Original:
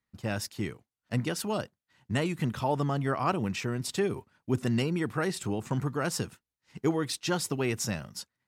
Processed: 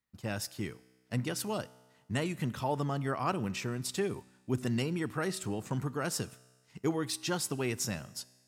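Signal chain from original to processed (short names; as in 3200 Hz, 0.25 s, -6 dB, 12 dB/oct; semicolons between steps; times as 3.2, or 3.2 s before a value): high shelf 6200 Hz +5 dB; resonator 63 Hz, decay 1.4 s, harmonics all, mix 40%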